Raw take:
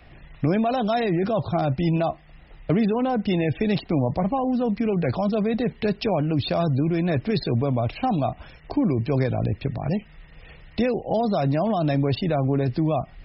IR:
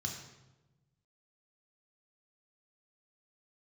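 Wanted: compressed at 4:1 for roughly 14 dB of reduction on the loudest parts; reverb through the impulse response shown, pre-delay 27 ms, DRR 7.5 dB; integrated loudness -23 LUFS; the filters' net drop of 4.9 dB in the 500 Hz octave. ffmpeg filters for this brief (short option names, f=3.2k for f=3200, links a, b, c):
-filter_complex "[0:a]equalizer=f=500:t=o:g=-6.5,acompressor=threshold=-37dB:ratio=4,asplit=2[a][b];[1:a]atrim=start_sample=2205,adelay=27[c];[b][c]afir=irnorm=-1:irlink=0,volume=-8dB[d];[a][d]amix=inputs=2:normalize=0,volume=12.5dB"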